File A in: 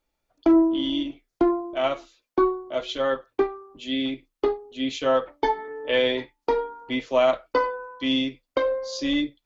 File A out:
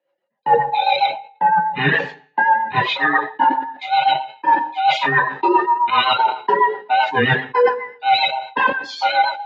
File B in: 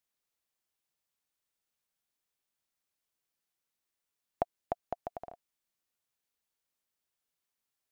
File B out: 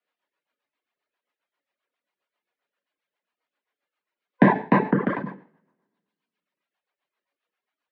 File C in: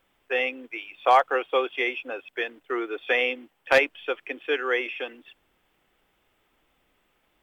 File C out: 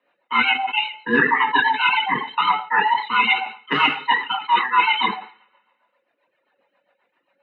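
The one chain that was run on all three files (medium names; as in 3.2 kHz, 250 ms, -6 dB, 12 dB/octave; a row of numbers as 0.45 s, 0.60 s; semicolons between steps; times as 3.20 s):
split-band scrambler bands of 500 Hz; gate -44 dBFS, range -15 dB; high-pass 160 Hz 24 dB/octave; two-slope reverb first 0.53 s, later 1.9 s, from -26 dB, DRR -4 dB; rotary cabinet horn 7.5 Hz; three-band isolator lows -14 dB, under 330 Hz, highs -21 dB, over 3.4 kHz; reverb removal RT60 1.2 s; reverse; compression 16:1, threshold -31 dBFS; reverse; treble shelf 5.2 kHz -11.5 dB; de-hum 433.3 Hz, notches 31; decay stretcher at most 140 dB/s; peak normalisation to -3 dBFS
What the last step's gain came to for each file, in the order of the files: +19.5 dB, +26.0 dB, +18.0 dB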